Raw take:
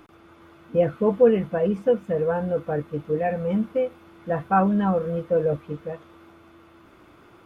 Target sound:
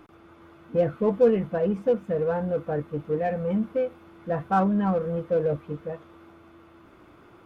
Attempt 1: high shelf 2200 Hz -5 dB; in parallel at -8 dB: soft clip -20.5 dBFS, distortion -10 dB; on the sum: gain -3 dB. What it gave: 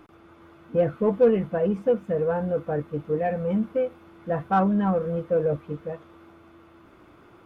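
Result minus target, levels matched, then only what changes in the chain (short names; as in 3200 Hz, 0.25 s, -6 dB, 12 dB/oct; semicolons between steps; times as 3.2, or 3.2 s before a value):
soft clip: distortion -5 dB
change: soft clip -28.5 dBFS, distortion -5 dB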